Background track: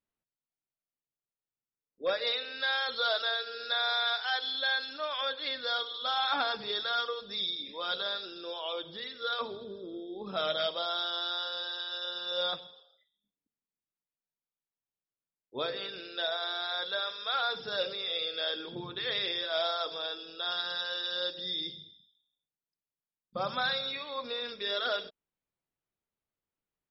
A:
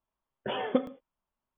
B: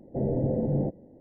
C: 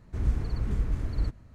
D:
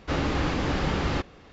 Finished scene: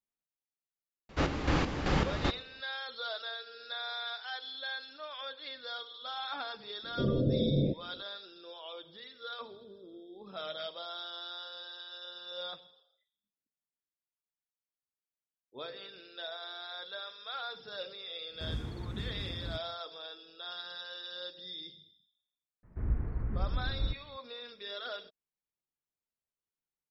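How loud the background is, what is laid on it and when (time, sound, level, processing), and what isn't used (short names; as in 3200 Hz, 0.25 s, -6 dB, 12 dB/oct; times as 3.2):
background track -9 dB
1.09 add D -1.5 dB + chopper 2.6 Hz, depth 60%, duty 45%
6.83 add B -2 dB + steep low-pass 600 Hz 48 dB/oct
18.27 add C -5 dB, fades 0.10 s + HPF 87 Hz
22.63 add C -5 dB + LPF 2000 Hz 24 dB/oct
not used: A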